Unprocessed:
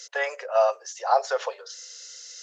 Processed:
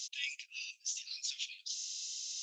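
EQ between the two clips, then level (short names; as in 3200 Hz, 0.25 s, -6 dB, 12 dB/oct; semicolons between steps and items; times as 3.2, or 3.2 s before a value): Chebyshev high-pass 2400 Hz, order 6; bell 3500 Hz +4 dB 0.38 oct; +1.0 dB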